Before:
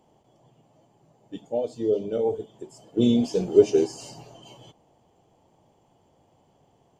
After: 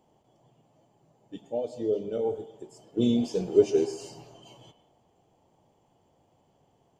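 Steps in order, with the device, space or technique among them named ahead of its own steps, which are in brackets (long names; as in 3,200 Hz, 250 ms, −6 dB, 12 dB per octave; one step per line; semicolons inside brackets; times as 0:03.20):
filtered reverb send (on a send: high-pass filter 540 Hz + low-pass filter 3,800 Hz + convolution reverb RT60 0.90 s, pre-delay 98 ms, DRR 12 dB)
on the sum: level −4 dB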